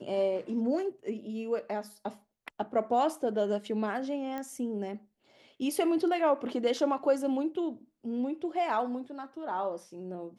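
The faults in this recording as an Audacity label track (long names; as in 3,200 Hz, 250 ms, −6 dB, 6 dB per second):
4.380000	4.380000	click −24 dBFS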